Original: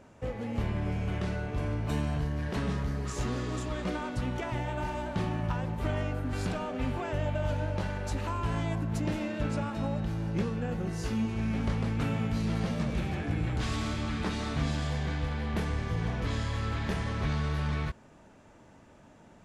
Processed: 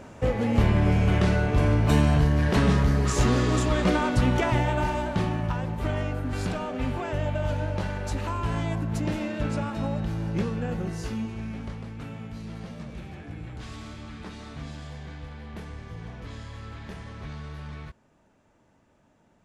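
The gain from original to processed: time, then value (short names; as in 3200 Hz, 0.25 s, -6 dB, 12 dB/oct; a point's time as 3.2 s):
4.45 s +10.5 dB
5.51 s +3 dB
10.79 s +3 dB
11.87 s -8 dB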